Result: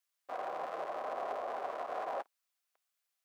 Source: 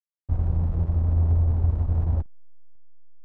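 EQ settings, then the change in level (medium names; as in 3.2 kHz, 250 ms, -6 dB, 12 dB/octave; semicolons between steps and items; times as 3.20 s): high-pass 630 Hz 24 dB/octave; Butterworth band-stop 890 Hz, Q 7.7; +11.0 dB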